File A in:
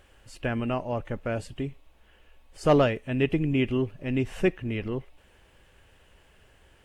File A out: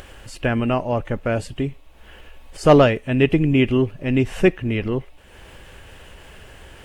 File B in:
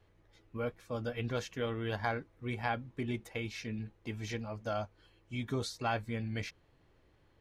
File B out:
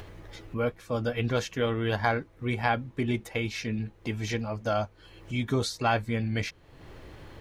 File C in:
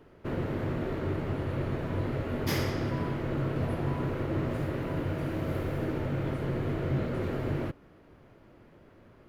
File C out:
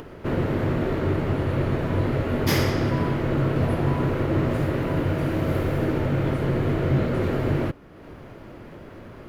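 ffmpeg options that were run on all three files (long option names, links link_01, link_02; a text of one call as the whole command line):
ffmpeg -i in.wav -af "acompressor=mode=upward:threshold=-41dB:ratio=2.5,volume=8dB" out.wav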